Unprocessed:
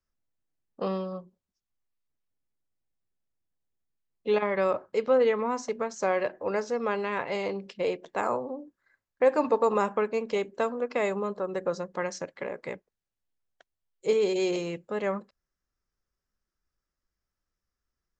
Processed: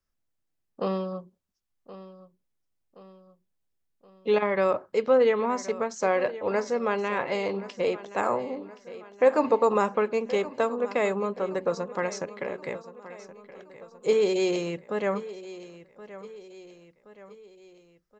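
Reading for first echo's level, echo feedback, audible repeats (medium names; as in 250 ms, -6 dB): -16.0 dB, 50%, 4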